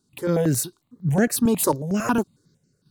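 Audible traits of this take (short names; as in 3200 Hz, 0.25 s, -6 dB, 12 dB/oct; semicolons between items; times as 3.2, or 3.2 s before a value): random-step tremolo; notches that jump at a steady rate 11 Hz 530–3600 Hz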